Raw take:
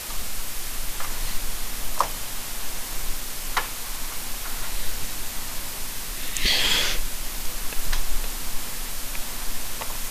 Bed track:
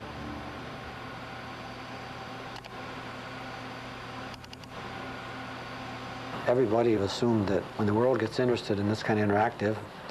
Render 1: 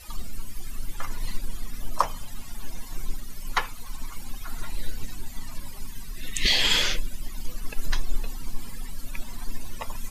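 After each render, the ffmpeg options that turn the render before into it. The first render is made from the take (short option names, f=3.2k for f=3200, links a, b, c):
-af "afftdn=nr=19:nf=-33"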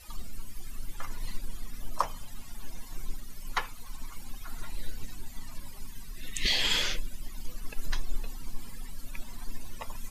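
-af "volume=-5.5dB"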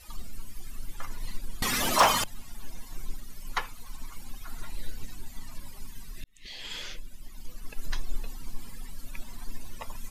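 -filter_complex "[0:a]asettb=1/sr,asplit=3[a][b][c];[a]atrim=end=1.624[d];[b]atrim=start=1.62:end=2.24,asetpts=PTS-STARTPTS,afade=t=in:d=0.004:c=qsin,afade=t=out:st=0.616:d=0.004:c=qsin,asplit=2[e][f];[f]highpass=f=720:p=1,volume=34dB,asoftclip=type=tanh:threshold=-10dB[g];[e][g]amix=inputs=2:normalize=0,lowpass=f=4.9k:p=1,volume=-6dB[h];[c]atrim=start=2.236[i];[d][h]acrossfade=d=0.004:c1=hsin:c2=qsin[j];[j][i]acrossfade=d=0.004:c1=qsin:c2=hsin,asplit=2[k][l];[k]atrim=end=6.24,asetpts=PTS-STARTPTS,afade=t=out:st=6.236:d=0.004:c=hsin[m];[l]atrim=start=6.24,asetpts=PTS-STARTPTS,afade=t=in:d=1.85[n];[m][n]concat=n=2:v=0:a=1"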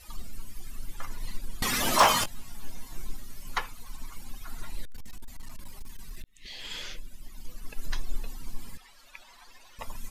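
-filter_complex "[0:a]asettb=1/sr,asplit=3[a][b][c];[a]atrim=end=1.844[d];[b]atrim=start=1.84:end=3.57,asetpts=PTS-STARTPTS,afade=t=in:d=0.004:c=qsin,afade=t=out:st=1.726:d=0.004:c=qsin,asplit=2[e][f];[f]adelay=19,volume=-7dB[g];[e][g]amix=inputs=2:normalize=0,atrim=end_sample=76293[h];[c]atrim=start=3.566[i];[d][h]acrossfade=d=0.004:c1=hsin:c2=qsin[j];[j][i]acrossfade=d=0.004:c1=qsin:c2=hsin,asettb=1/sr,asplit=3[k][l][m];[k]atrim=end=4.854[n];[l]atrim=start=4.85:end=6.71,asetpts=PTS-STARTPTS,afade=t=in:d=0.004:c=qsin,afade=t=out:st=1.856:d=0.004:c=qsin,asoftclip=type=hard:threshold=-33dB[o];[m]atrim=start=6.706[p];[n][o]acrossfade=d=0.004:c1=hsin:c2=qsin[q];[q][p]acrossfade=d=0.004:c1=qsin:c2=hsin,asettb=1/sr,asplit=3[r][s][t];[r]atrim=end=8.774[u];[s]atrim=start=8.77:end=9.79,asetpts=PTS-STARTPTS,afade=t=in:d=0.004:c=qsin,afade=t=out:st=1.016:d=0.004:c=qsin,acrossover=split=540 5800:gain=0.0631 1 0.224[v][w][x];[v][w][x]amix=inputs=3:normalize=0[y];[t]atrim=start=9.786[z];[u][y]acrossfade=d=0.004:c1=hsin:c2=qsin[aa];[aa][z]acrossfade=d=0.004:c1=qsin:c2=hsin"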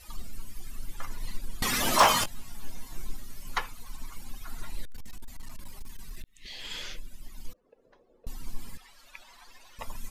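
-filter_complex "[0:a]asettb=1/sr,asplit=3[a][b][c];[a]atrim=end=7.534[d];[b]atrim=start=7.53:end=8.27,asetpts=PTS-STARTPTS,afade=t=in:d=0.004:c=qsin,afade=t=out:st=0.736:d=0.004:c=qsin,bandpass=f=500:t=q:w=5.7[e];[c]atrim=start=8.266[f];[d][e]acrossfade=d=0.004:c1=hsin:c2=qsin[g];[g][f]acrossfade=d=0.004:c1=qsin:c2=hsin"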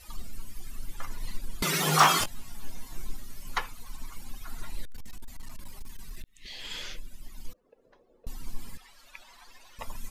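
-filter_complex "[0:a]asettb=1/sr,asplit=3[a][b][c];[a]atrim=end=1.624[d];[b]atrim=start=1.62:end=2.19,asetpts=PTS-STARTPTS,afade=t=in:d=0.004:c=qsin,afade=t=out:st=0.566:d=0.004:c=qsin,afreqshift=150[e];[c]atrim=start=2.186[f];[d][e]acrossfade=d=0.004:c1=hsin:c2=qsin[g];[g][f]acrossfade=d=0.004:c1=qsin:c2=hsin"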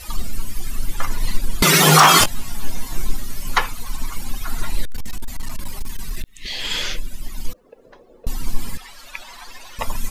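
-af "alimiter=level_in=14.5dB:limit=-1dB:release=50:level=0:latency=1"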